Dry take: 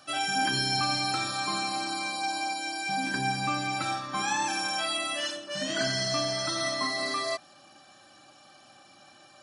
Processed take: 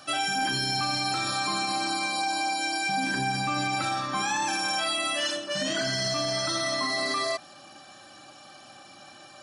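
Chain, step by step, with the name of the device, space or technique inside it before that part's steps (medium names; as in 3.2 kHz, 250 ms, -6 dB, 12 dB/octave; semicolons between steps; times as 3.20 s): soft clipper into limiter (saturation -16.5 dBFS, distortion -28 dB; peak limiter -26 dBFS, peak gain reduction 7.5 dB); trim +6 dB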